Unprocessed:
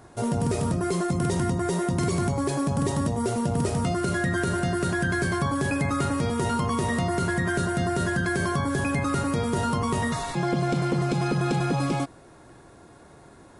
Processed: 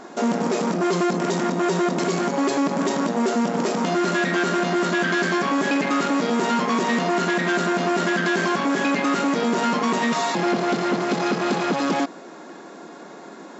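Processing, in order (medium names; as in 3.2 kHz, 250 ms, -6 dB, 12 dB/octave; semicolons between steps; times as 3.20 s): in parallel at -1 dB: peak limiter -23.5 dBFS, peak gain reduction 7.5 dB; on the sum: hard clipper -23 dBFS, distortion -10 dB; brick-wall FIR band-pass 170–7700 Hz; trim +5.5 dB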